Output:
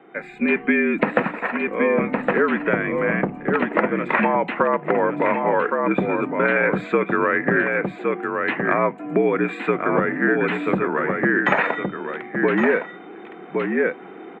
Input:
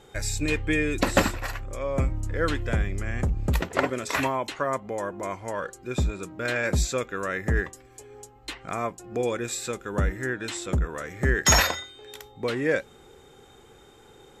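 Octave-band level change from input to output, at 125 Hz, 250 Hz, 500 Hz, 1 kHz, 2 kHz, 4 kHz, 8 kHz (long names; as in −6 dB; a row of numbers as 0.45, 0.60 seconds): −2.5 dB, +9.5 dB, +9.0 dB, +9.0 dB, +8.5 dB, −9.0 dB, below −30 dB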